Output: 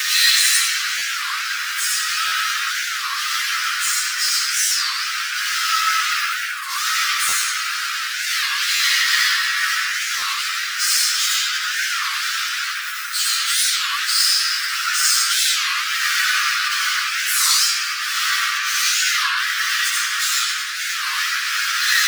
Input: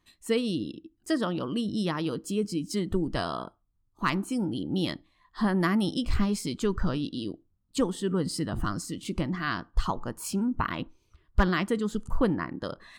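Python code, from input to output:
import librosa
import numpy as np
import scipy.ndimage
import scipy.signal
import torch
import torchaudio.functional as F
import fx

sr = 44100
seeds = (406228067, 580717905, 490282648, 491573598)

p1 = np.sign(x) * np.sqrt(np.mean(np.square(x)))
p2 = fx.high_shelf(p1, sr, hz=2100.0, db=-5.0)
p3 = fx.rev_freeverb(p2, sr, rt60_s=2.9, hf_ratio=0.4, predelay_ms=10, drr_db=-8.5)
p4 = fx.rider(p3, sr, range_db=10, speed_s=0.5)
p5 = p3 + (p4 * 10.0 ** (1.0 / 20.0))
p6 = fx.dynamic_eq(p5, sr, hz=5300.0, q=1.6, threshold_db=-42.0, ratio=4.0, max_db=7)
p7 = fx.stretch_vocoder_free(p6, sr, factor=1.7)
p8 = scipy.signal.sosfilt(scipy.signal.butter(12, 1300.0, 'highpass', fs=sr, output='sos'), p7)
p9 = fx.buffer_glitch(p8, sr, at_s=(0.98, 2.27, 4.69, 7.28, 8.75, 10.2), block=512, repeats=3)
p10 = fx.record_warp(p9, sr, rpm=33.33, depth_cents=250.0)
y = p10 * 10.0 ** (6.0 / 20.0)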